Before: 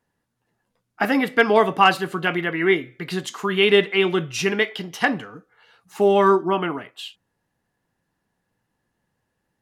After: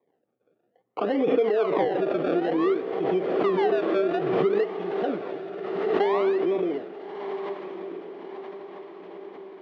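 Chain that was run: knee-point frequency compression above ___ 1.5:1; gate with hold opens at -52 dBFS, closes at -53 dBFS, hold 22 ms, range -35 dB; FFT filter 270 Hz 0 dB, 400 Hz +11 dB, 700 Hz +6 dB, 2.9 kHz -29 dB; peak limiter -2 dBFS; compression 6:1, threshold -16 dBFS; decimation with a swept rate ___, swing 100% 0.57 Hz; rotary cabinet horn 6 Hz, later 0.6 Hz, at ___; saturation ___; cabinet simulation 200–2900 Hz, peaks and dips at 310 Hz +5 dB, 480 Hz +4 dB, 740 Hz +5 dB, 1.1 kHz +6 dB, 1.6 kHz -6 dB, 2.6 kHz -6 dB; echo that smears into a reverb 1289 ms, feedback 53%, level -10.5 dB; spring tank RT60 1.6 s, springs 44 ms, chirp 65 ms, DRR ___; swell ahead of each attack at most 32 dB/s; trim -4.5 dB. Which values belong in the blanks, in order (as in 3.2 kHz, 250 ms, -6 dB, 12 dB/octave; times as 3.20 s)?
1.1 kHz, 30×, 3.99 s, -11 dBFS, 16 dB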